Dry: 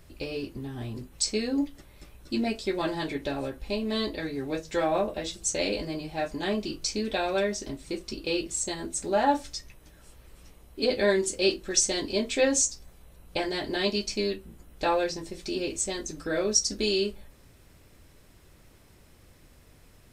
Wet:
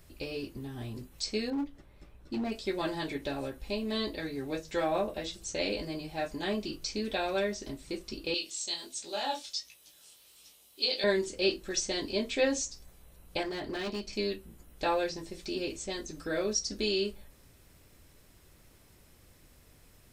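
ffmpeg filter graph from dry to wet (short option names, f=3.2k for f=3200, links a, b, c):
-filter_complex "[0:a]asettb=1/sr,asplit=3[a][b][c];[a]atrim=end=1.504[d];[b]atrim=start=1.5:end=2.52,asetpts=PTS-STARTPTS,afade=t=in:d=0.004:c=qsin,afade=t=out:st=1.016:d=0.004:c=qsin,lowpass=f=1.5k:p=1,asoftclip=type=hard:threshold=-25dB[e];[c]atrim=start=2.516[f];[d][e]acrossfade=d=0.004:c1=hsin:c2=qsin[g];[g][f]acrossfade=d=0.004:c1=qsin:c2=hsin,asettb=1/sr,asplit=3[h][i][j];[h]atrim=end=8.344[k];[i]atrim=start=8.34:end=11.04,asetpts=PTS-STARTPTS,afade=t=in:d=0.004:c=qsin,afade=t=out:st=2.696:d=0.004:c=qsin,highpass=f=730:p=1,highshelf=f=2.5k:t=q:w=1.5:g=9,flanger=delay=17.5:depth=6.2:speed=1.4[l];[j]atrim=start=11.036[m];[k][l]acrossfade=d=0.004:c1=hsin:c2=qsin[n];[n][m]acrossfade=d=0.004:c1=qsin:c2=hsin,asettb=1/sr,asplit=3[o][p][q];[o]atrim=end=13.434[r];[p]atrim=start=13.43:end=14.13,asetpts=PTS-STARTPTS,afade=t=in:d=0.004:c=qsin,afade=t=out:st=0.696:d=0.004:c=qsin,highshelf=f=3.1k:g=-10,asoftclip=type=hard:threshold=-28dB[s];[q]atrim=start=14.126[t];[r][s]acrossfade=d=0.004:c1=hsin:c2=qsin[u];[u][t]acrossfade=d=0.004:c1=qsin:c2=hsin,aemphasis=mode=production:type=50kf,acrossover=split=5300[v][w];[w]acompressor=threshold=-45dB:ratio=4:attack=1:release=60[x];[v][x]amix=inputs=2:normalize=0,highshelf=f=7k:g=-8.5,volume=-4dB"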